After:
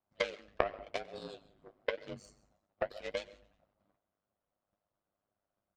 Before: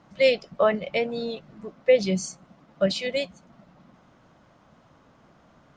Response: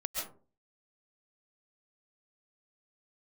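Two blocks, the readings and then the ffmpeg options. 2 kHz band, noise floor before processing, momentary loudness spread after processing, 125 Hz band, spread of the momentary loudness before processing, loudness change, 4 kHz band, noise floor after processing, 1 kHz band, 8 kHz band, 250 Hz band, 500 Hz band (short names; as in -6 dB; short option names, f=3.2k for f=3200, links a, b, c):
-11.0 dB, -58 dBFS, 13 LU, -19.0 dB, 15 LU, -15.0 dB, -15.0 dB, under -85 dBFS, -8.5 dB, -21.0 dB, -21.5 dB, -16.0 dB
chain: -filter_complex "[0:a]agate=range=-12dB:threshold=-53dB:ratio=16:detection=peak,equalizer=f=200:t=o:w=0.33:g=-10,equalizer=f=630:t=o:w=0.33:g=7,equalizer=f=6.3k:t=o:w=0.33:g=-10,acompressor=threshold=-26dB:ratio=16,aeval=exprs='0.2*(cos(1*acos(clip(val(0)/0.2,-1,1)))-cos(1*PI/2))+0.0631*(cos(3*acos(clip(val(0)/0.2,-1,1)))-cos(3*PI/2))':c=same,asplit=5[a][b][c][d][e];[b]adelay=92,afreqshift=-130,volume=-24dB[f];[c]adelay=184,afreqshift=-260,volume=-28.9dB[g];[d]adelay=276,afreqshift=-390,volume=-33.8dB[h];[e]adelay=368,afreqshift=-520,volume=-38.6dB[i];[a][f][g][h][i]amix=inputs=5:normalize=0,flanger=delay=5.5:depth=9.9:regen=41:speed=0.95:shape=sinusoidal,asplit=2[j][k];[1:a]atrim=start_sample=2205[l];[k][l]afir=irnorm=-1:irlink=0,volume=-19.5dB[m];[j][m]amix=inputs=2:normalize=0,aeval=exprs='val(0)*sin(2*PI*51*n/s)':c=same,volume=11dB"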